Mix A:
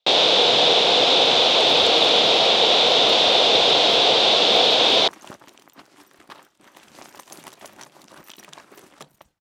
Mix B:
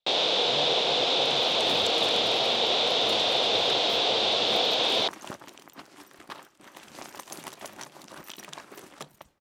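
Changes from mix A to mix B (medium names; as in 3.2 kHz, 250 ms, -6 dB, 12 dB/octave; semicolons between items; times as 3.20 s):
first sound -8.5 dB; reverb: on, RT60 2.7 s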